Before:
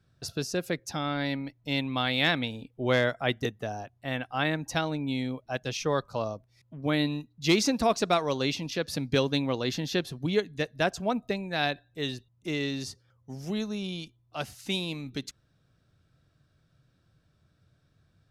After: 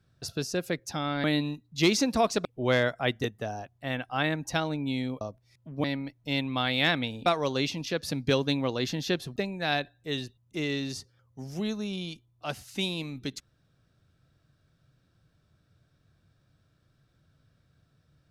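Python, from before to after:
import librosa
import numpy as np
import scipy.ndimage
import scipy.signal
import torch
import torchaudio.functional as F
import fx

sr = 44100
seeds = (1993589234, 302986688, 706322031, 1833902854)

y = fx.edit(x, sr, fx.swap(start_s=1.24, length_s=1.42, other_s=6.9, other_length_s=1.21),
    fx.cut(start_s=5.42, length_s=0.85),
    fx.cut(start_s=10.21, length_s=1.06), tone=tone)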